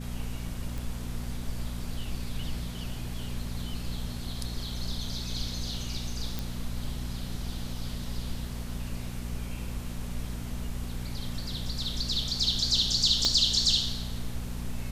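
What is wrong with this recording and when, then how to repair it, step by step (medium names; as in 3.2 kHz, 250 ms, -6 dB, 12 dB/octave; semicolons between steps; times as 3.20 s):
hum 60 Hz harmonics 4 -37 dBFS
0.78 s: pop
6.39 s: pop
13.25 s: pop -13 dBFS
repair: de-click; de-hum 60 Hz, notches 4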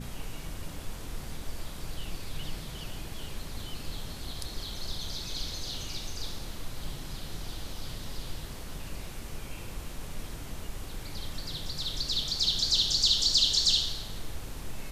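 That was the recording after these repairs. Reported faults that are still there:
13.25 s: pop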